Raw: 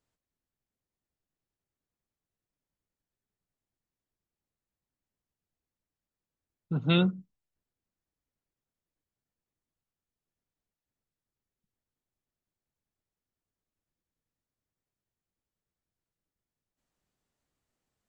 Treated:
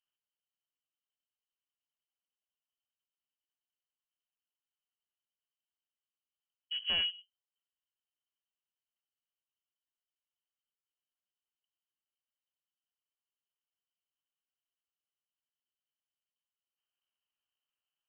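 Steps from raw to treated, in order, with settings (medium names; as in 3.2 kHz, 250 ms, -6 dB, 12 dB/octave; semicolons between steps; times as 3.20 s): comb filter that takes the minimum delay 0.52 ms; frequency inversion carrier 3.1 kHz; trim -8.5 dB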